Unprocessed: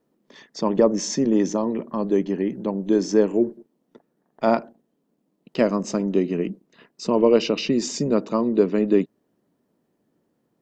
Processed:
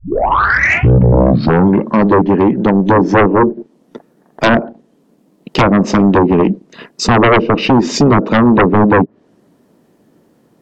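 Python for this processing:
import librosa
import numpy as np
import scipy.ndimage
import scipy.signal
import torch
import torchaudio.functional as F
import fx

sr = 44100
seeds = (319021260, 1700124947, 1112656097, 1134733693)

y = fx.tape_start_head(x, sr, length_s=2.0)
y = fx.env_lowpass_down(y, sr, base_hz=630.0, full_db=-15.0)
y = fx.fold_sine(y, sr, drive_db=13, ceiling_db=-5.5)
y = F.gain(torch.from_numpy(y), 1.0).numpy()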